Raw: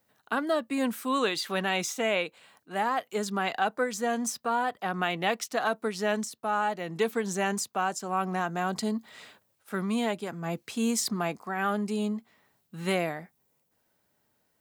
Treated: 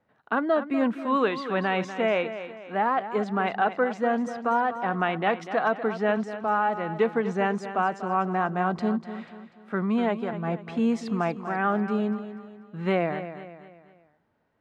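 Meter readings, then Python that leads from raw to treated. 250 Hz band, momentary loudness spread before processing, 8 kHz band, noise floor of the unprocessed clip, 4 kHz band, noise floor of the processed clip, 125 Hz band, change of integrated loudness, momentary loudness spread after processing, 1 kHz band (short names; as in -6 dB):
+4.0 dB, 7 LU, under -15 dB, -74 dBFS, -6.5 dB, -65 dBFS, +4.0 dB, +3.0 dB, 8 LU, +4.0 dB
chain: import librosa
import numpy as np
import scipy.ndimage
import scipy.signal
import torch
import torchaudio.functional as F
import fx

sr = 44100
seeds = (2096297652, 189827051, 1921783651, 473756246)

p1 = scipy.signal.sosfilt(scipy.signal.butter(2, 1900.0, 'lowpass', fs=sr, output='sos'), x)
p2 = p1 + fx.echo_feedback(p1, sr, ms=244, feedback_pct=42, wet_db=-11.5, dry=0)
y = p2 * librosa.db_to_amplitude(4.0)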